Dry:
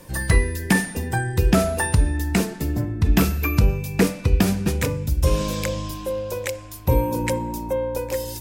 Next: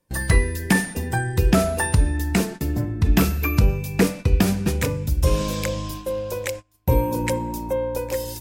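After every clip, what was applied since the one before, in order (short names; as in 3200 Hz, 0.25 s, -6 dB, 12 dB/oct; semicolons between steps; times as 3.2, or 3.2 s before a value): gate -32 dBFS, range -27 dB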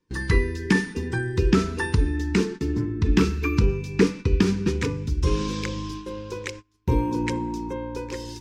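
EQ curve 150 Hz 0 dB, 430 Hz +8 dB, 640 Hz -23 dB, 940 Hz +1 dB, 5900 Hz +1 dB, 14000 Hz -25 dB; gain -3.5 dB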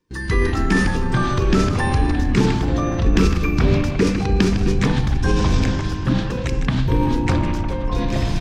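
frequency-shifting echo 0.155 s, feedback 32%, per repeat -95 Hz, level -12.5 dB; transient shaper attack -3 dB, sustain +7 dB; echoes that change speed 86 ms, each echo -7 st, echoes 3; gain +2 dB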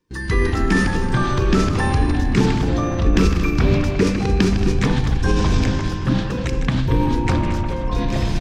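echo 0.226 s -12 dB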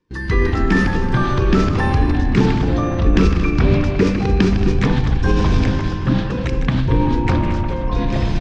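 air absorption 110 m; gain +2 dB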